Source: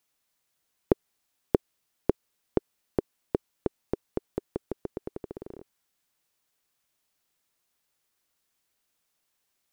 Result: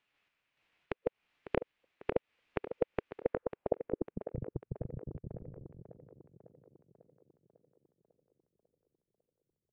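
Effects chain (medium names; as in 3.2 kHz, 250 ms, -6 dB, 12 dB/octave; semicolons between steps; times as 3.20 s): chunks repeated in reverse 142 ms, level 0 dB; compression 6:1, threshold -26 dBFS, peak gain reduction 12 dB; peak limiter -17 dBFS, peak gain reduction 7.5 dB; low-pass sweep 2 kHz -> 110 Hz, 3.20–4.34 s; formant shift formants +4 st; random-step tremolo; tape echo 548 ms, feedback 63%, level -10 dB, low-pass 2.8 kHz; trim +2.5 dB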